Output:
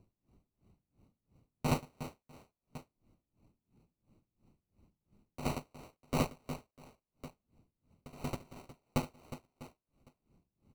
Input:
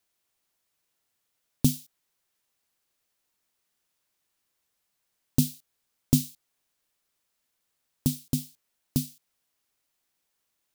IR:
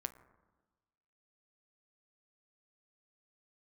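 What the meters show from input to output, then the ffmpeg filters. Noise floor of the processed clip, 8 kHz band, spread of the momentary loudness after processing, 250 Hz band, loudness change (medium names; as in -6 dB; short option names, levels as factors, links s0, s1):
under -85 dBFS, -14.5 dB, 21 LU, -10.0 dB, -10.5 dB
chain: -filter_complex "[0:a]tiltshelf=f=970:g=-3.5,acrossover=split=270[s0][s1];[s0]acompressor=mode=upward:threshold=0.02:ratio=2.5[s2];[s1]acrusher=samples=26:mix=1:aa=0.000001[s3];[s2][s3]amix=inputs=2:normalize=0,aecho=1:1:70|182|361.2|647.9|1107:0.631|0.398|0.251|0.158|0.1,aeval=exprs='val(0)*pow(10,-25*(0.5-0.5*cos(2*PI*2.9*n/s))/20)':c=same,volume=0.668"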